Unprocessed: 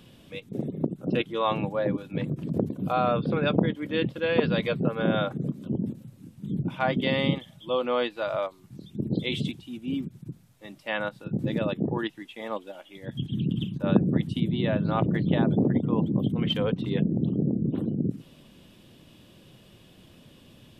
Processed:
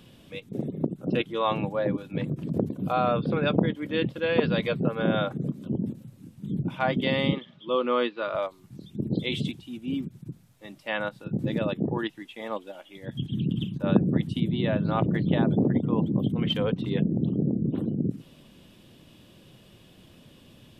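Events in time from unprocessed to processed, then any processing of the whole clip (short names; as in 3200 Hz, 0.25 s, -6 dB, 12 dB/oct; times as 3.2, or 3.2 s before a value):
7.32–8.35 speaker cabinet 180–4300 Hz, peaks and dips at 230 Hz +5 dB, 390 Hz +6 dB, 730 Hz -8 dB, 1200 Hz +5 dB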